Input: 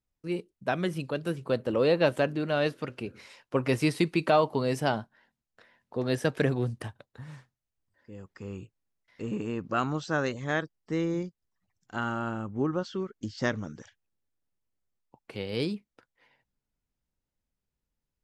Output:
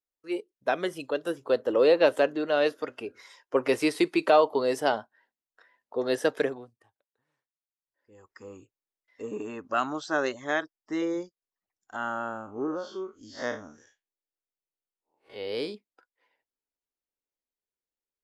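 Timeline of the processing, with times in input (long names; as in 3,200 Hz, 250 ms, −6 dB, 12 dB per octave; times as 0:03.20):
0:06.31–0:08.18: duck −19 dB, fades 0.40 s
0:09.38–0:11.02: notch filter 480 Hz, Q 6.2
0:11.96–0:15.75: spectrum smeared in time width 111 ms
whole clip: noise reduction from a noise print of the clip's start 10 dB; low shelf with overshoot 240 Hz −14 dB, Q 1.5; level +1.5 dB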